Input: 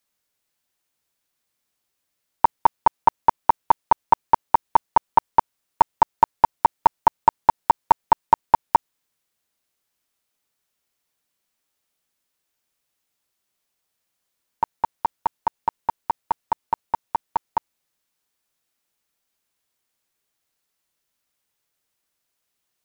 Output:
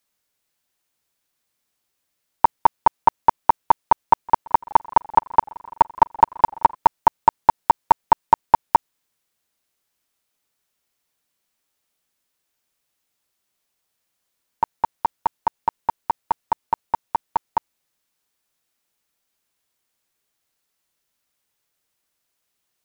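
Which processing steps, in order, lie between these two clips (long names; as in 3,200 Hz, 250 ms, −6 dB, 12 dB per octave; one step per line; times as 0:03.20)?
0:04.03–0:06.76: feedback echo with a swinging delay time 169 ms, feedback 78%, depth 181 cents, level −24 dB
level +1.5 dB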